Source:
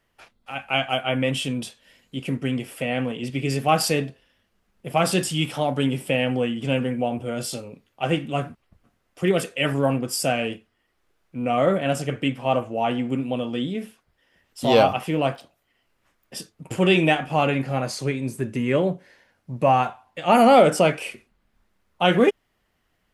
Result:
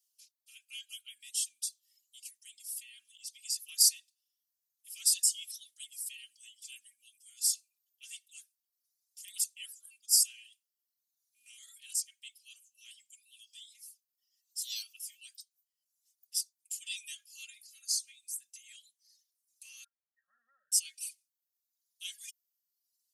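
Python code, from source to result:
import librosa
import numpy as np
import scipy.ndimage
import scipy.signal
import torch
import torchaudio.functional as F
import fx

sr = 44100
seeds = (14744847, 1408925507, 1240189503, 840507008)

y = fx.brickwall_lowpass(x, sr, high_hz=1900.0, at=(19.84, 20.72))
y = scipy.signal.sosfilt(scipy.signal.cheby2(4, 80, 930.0, 'highpass', fs=sr, output='sos'), y)
y = fx.dereverb_blind(y, sr, rt60_s=1.0)
y = y + 0.81 * np.pad(y, (int(3.7 * sr / 1000.0), 0))[:len(y)]
y = y * librosa.db_to_amplitude(3.0)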